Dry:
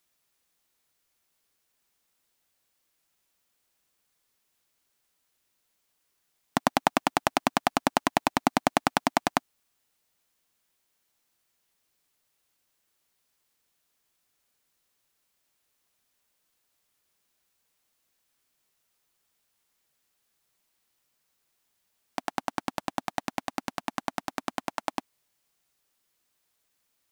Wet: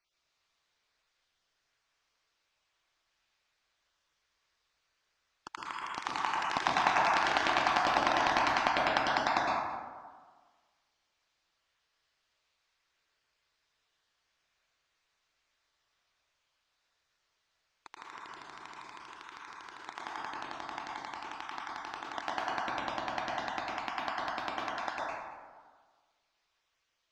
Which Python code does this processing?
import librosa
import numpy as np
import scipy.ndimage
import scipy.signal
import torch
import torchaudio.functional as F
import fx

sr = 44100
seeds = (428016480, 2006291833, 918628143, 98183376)

p1 = fx.spec_dropout(x, sr, seeds[0], share_pct=27)
p2 = scipy.signal.sosfilt(scipy.signal.butter(4, 5300.0, 'lowpass', fs=sr, output='sos'), p1)
p3 = fx.peak_eq(p2, sr, hz=210.0, db=-13.5, octaves=2.7)
p4 = fx.transient(p3, sr, attack_db=-2, sustain_db=2)
p5 = p4 + fx.echo_single(p4, sr, ms=223, db=-18.5, dry=0)
p6 = fx.echo_pitch(p5, sr, ms=128, semitones=2, count=2, db_per_echo=-6.0)
y = fx.rev_plate(p6, sr, seeds[1], rt60_s=1.5, hf_ratio=0.35, predelay_ms=100, drr_db=-4.0)